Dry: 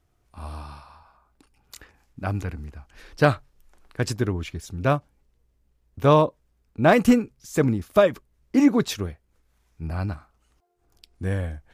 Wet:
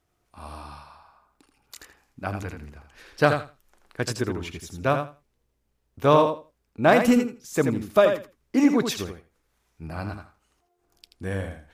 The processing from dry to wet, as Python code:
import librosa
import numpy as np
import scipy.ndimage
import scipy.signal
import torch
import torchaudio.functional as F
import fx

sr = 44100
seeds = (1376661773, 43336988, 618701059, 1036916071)

p1 = fx.low_shelf(x, sr, hz=140.0, db=-11.0)
y = p1 + fx.echo_feedback(p1, sr, ms=82, feedback_pct=16, wet_db=-7, dry=0)